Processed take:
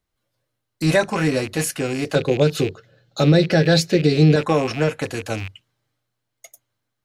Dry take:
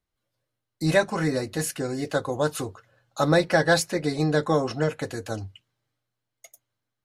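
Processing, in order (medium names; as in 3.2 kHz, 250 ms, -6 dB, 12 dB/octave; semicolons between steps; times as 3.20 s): rattle on loud lows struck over -37 dBFS, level -26 dBFS; 2.15–4.36 s: fifteen-band graphic EQ 160 Hz +10 dB, 400 Hz +9 dB, 1 kHz -11 dB, 4 kHz +7 dB, 10 kHz -10 dB; peak limiter -11 dBFS, peak gain reduction 8.5 dB; trim +5 dB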